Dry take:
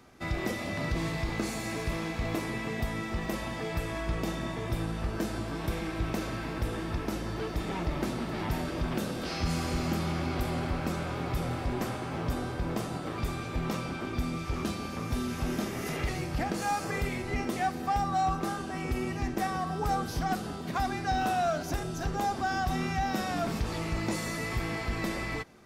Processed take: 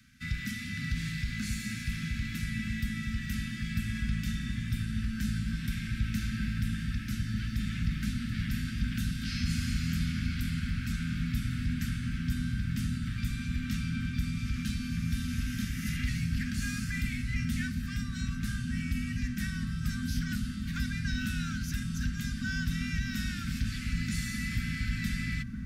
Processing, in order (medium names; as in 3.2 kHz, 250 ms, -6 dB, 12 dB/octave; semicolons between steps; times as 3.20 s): Chebyshev band-stop 240–1500 Hz, order 4; feedback echo behind a low-pass 1193 ms, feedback 80%, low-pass 660 Hz, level -3.5 dB